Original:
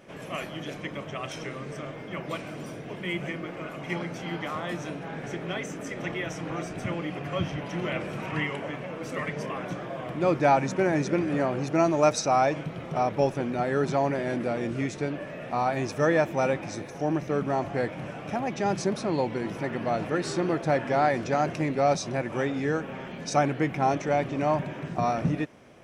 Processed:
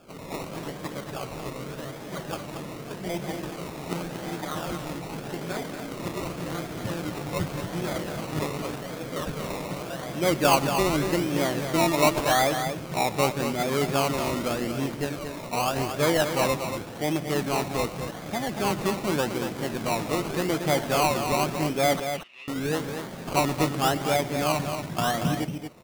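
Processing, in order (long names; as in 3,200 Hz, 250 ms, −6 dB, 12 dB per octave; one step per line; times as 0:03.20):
sample-and-hold swept by an LFO 22×, swing 60% 0.86 Hz
0:22.00–0:22.48: resonant band-pass 2,700 Hz, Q 7.6
multi-tap delay 121/231 ms −18/−7.5 dB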